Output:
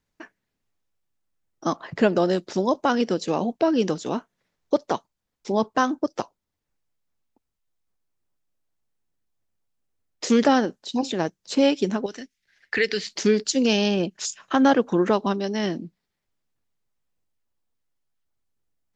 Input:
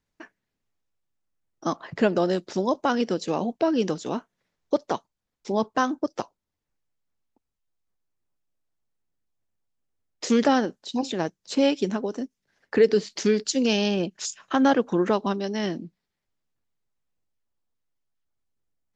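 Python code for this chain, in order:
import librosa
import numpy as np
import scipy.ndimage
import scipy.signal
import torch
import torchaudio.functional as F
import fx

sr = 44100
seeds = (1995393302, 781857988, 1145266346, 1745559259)

y = fx.graphic_eq(x, sr, hz=(125, 250, 500, 1000, 2000, 4000), db=(-6, -8, -7, -8, 10, 5), at=(12.06, 13.07))
y = F.gain(torch.from_numpy(y), 2.0).numpy()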